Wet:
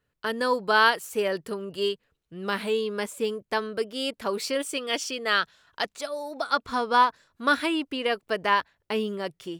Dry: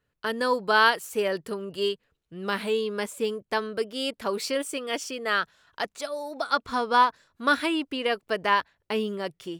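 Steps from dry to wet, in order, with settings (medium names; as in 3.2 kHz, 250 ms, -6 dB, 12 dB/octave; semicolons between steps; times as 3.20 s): 4.58–5.97 s: dynamic bell 3.9 kHz, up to +6 dB, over -44 dBFS, Q 0.91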